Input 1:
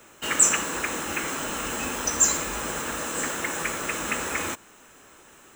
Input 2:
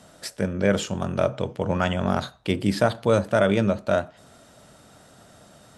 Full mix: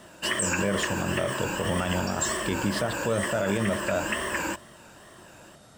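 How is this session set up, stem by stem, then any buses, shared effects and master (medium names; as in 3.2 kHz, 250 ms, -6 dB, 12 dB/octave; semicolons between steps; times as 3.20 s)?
-1.0 dB, 0.00 s, no send, rippled EQ curve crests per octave 1.3, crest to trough 13 dB; wow and flutter 140 cents; treble shelf 4.7 kHz -7.5 dB
-1.5 dB, 0.00 s, no send, none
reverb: none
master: peak limiter -16 dBFS, peak gain reduction 10 dB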